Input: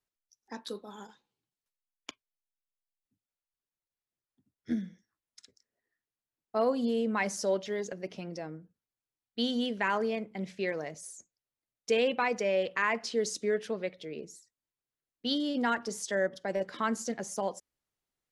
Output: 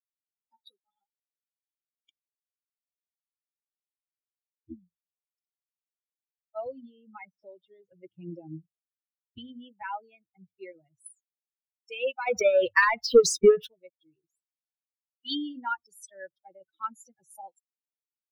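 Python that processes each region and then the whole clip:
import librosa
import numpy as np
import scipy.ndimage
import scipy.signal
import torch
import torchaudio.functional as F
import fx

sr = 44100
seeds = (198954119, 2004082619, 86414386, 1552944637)

y = fx.chain(x, sr, fx.air_absorb(metres=210.0),
    fx.band_squash(depth_pct=100), at=(6.66, 9.82))
y = fx.chain(y, sr, fx.high_shelf(hz=10000.0, db=-10.0),
    fx.leveller(passes=2),
    fx.transient(attack_db=11, sustain_db=7), at=(12.27, 13.67))
y = fx.bin_expand(y, sr, power=3.0)
y = fx.hum_notches(y, sr, base_hz=50, count=2)
y = y + 0.38 * np.pad(y, (int(2.2 * sr / 1000.0), 0))[:len(y)]
y = F.gain(torch.from_numpy(y), 3.0).numpy()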